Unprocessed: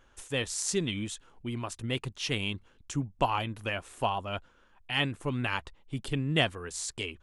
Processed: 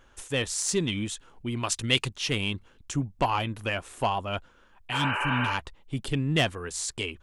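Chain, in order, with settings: soft clip -19 dBFS, distortion -18 dB; 1.63–2.08 bell 5200 Hz +11.5 dB 3 oct; 4.95–5.51 spectral repair 320–3100 Hz after; gain +4 dB

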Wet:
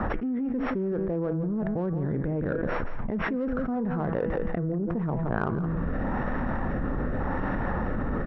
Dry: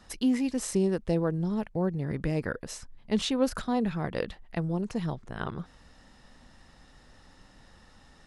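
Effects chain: sample sorter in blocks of 8 samples; LPF 1600 Hz 24 dB/oct; low shelf 120 Hz -5.5 dB; de-hum 163.4 Hz, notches 20; reverse; upward compressor, threshold -33 dBFS; reverse; rotary speaker horn 0.9 Hz; in parallel at -6 dB: soft clip -31.5 dBFS, distortion -8 dB; on the sum: echo 0.17 s -13 dB; fast leveller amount 100%; gain -6 dB

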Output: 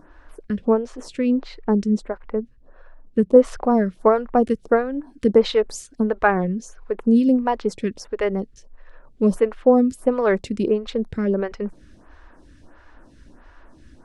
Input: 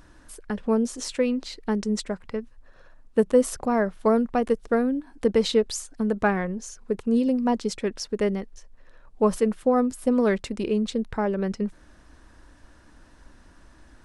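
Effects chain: LPF 1600 Hz 6 dB/oct, from 1.97 s 1000 Hz, from 3.36 s 3000 Hz; photocell phaser 1.5 Hz; gain +7.5 dB

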